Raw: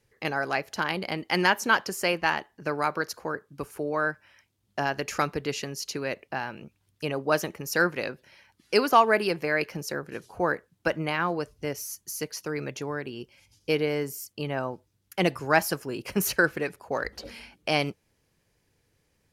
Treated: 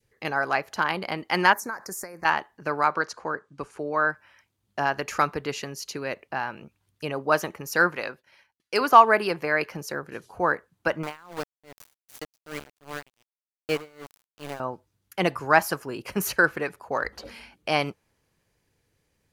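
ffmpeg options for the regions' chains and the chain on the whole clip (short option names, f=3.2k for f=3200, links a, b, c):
-filter_complex "[0:a]asettb=1/sr,asplit=3[a][b][c];[a]atrim=end=1.534[d];[b]atrim=start=1.53:end=2.25,asetpts=PTS-STARTPTS,afade=t=in:d=0.004:c=qsin,afade=t=out:st=0.716:d=0.004:c=qsin,highshelf=f=1.7k:t=q:w=1.5:g=7.5,acompressor=threshold=-28dB:ratio=16:attack=3.2:release=140:knee=1:detection=peak,asuperstop=centerf=3100:order=4:qfactor=0.7[e];[c]atrim=start=2.246[f];[d][e]acrossfade=d=0.004:c1=hsin:c2=qsin[g];[g][f]acrossfade=d=0.004:c1=qsin:c2=hsin,asettb=1/sr,asplit=3[h][i][j];[h]atrim=end=2.814[k];[i]atrim=start=2.81:end=4.09,asetpts=PTS-STARTPTS,afade=t=in:d=0.004:c=qsin,afade=t=out:st=1.276:d=0.004:c=qsin,lowpass=f=8.5k:w=0.5412,lowpass=f=8.5k:w=1.3066,equalizer=f=81:t=o:w=0.89:g=-5.5[l];[j]atrim=start=4.086[m];[k][l]acrossfade=d=0.004:c1=hsin:c2=qsin[n];[n][m]acrossfade=d=0.004:c1=qsin:c2=hsin,asettb=1/sr,asplit=3[o][p][q];[o]atrim=end=7.964[r];[p]atrim=start=7.96:end=8.81,asetpts=PTS-STARTPTS,afade=t=in:d=0.004:c=qsin,afade=t=out:st=0.846:d=0.004:c=qsin,agate=range=-33dB:threshold=-53dB:ratio=3:release=100:detection=peak,asoftclip=type=hard:threshold=-10dB,lowshelf=f=410:g=-6.5[s];[q]atrim=start=8.806[t];[r][s]acrossfade=d=0.004:c1=hsin:c2=qsin[u];[u][t]acrossfade=d=0.004:c1=qsin:c2=hsin,asettb=1/sr,asplit=3[v][w][x];[v]atrim=end=11.034[y];[w]atrim=start=11.03:end=14.6,asetpts=PTS-STARTPTS,afade=t=in:d=0.004:c=qsin,afade=t=out:st=3.566:d=0.004:c=qsin,aeval=exprs='val(0)*gte(abs(val(0)),0.0376)':c=same,aeval=exprs='val(0)*pow(10,-27*(0.5-0.5*cos(2*PI*2.6*n/s))/20)':c=same[z];[x]atrim=start=14.596[aa];[y][z]acrossfade=d=0.004:c1=hsin:c2=qsin[ab];[ab][aa]acrossfade=d=0.004:c1=qsin:c2=hsin,bandreject=f=5.3k:w=27,adynamicequalizer=threshold=0.0126:dfrequency=1100:dqfactor=0.99:tfrequency=1100:tqfactor=0.99:attack=5:release=100:ratio=0.375:range=4:mode=boostabove:tftype=bell,volume=-1.5dB"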